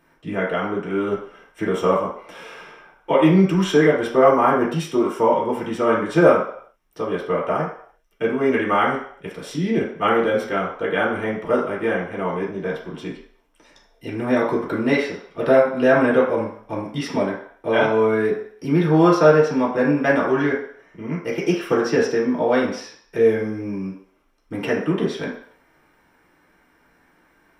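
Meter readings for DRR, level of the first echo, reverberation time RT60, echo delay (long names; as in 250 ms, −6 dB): −6.0 dB, no echo audible, 0.60 s, no echo audible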